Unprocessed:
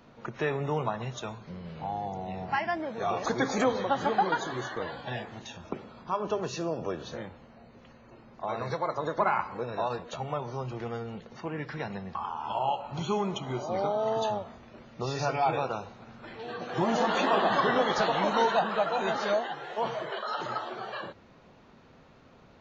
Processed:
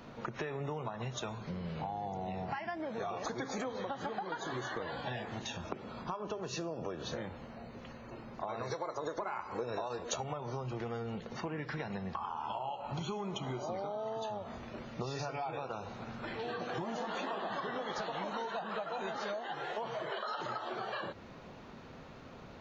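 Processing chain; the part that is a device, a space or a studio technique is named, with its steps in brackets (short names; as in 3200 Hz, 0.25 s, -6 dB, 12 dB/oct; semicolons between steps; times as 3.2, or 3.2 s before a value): serial compression, peaks first (compressor, threshold -34 dBFS, peak gain reduction 13.5 dB; compressor 2.5:1, threshold -43 dBFS, peak gain reduction 8 dB); 8.63–10.24 fifteen-band EQ 160 Hz -6 dB, 400 Hz +4 dB, 6300 Hz +10 dB; gain +5 dB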